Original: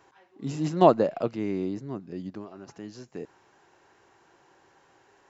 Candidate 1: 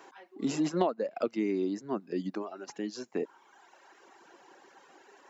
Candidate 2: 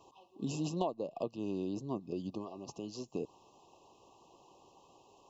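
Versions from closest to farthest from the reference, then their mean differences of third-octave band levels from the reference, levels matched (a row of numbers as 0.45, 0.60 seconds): 1, 2; 5.5, 7.5 decibels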